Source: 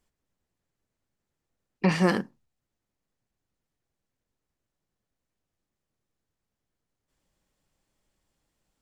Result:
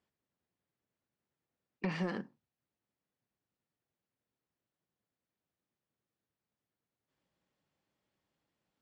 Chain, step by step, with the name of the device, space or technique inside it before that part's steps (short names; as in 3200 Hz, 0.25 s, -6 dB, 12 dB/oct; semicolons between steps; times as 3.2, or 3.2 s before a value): AM radio (BPF 110–4200 Hz; compressor 5:1, threshold -26 dBFS, peak gain reduction 9.5 dB; soft clip -19 dBFS, distortion -18 dB); gain -4.5 dB